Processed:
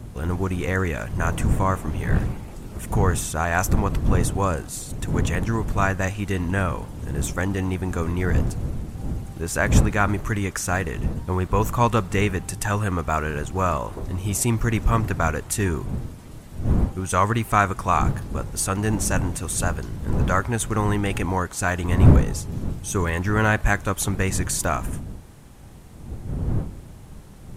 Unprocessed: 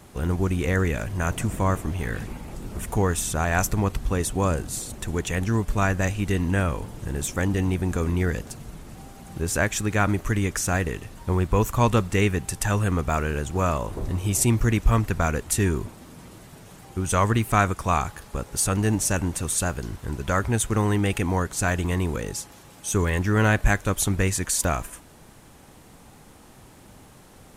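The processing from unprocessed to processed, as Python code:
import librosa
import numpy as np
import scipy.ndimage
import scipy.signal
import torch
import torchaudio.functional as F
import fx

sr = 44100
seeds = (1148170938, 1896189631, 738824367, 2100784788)

y = fx.dmg_wind(x, sr, seeds[0], corner_hz=130.0, level_db=-25.0)
y = fx.dynamic_eq(y, sr, hz=1100.0, q=0.86, threshold_db=-38.0, ratio=4.0, max_db=5)
y = y * librosa.db_to_amplitude(-1.5)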